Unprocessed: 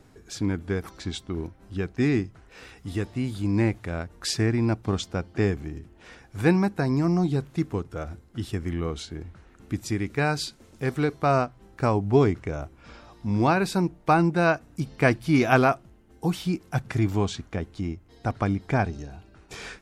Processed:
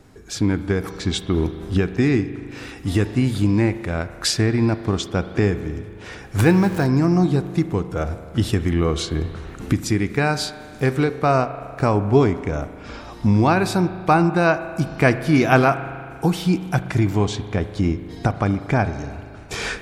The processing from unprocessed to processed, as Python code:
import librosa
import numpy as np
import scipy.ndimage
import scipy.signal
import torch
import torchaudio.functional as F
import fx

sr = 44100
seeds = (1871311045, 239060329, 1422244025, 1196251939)

y = fx.zero_step(x, sr, step_db=-33.0, at=(6.39, 6.87))
y = fx.recorder_agc(y, sr, target_db=-14.0, rise_db_per_s=10.0, max_gain_db=30)
y = fx.rev_spring(y, sr, rt60_s=2.2, pass_ms=(38,), chirp_ms=40, drr_db=11.5)
y = y * librosa.db_to_amplitude(4.0)